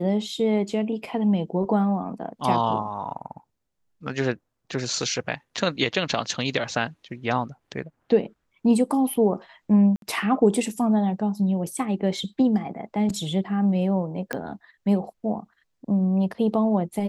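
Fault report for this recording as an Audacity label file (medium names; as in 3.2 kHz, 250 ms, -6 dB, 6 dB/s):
9.960000	10.020000	dropout 62 ms
14.330000	14.330000	pop -13 dBFS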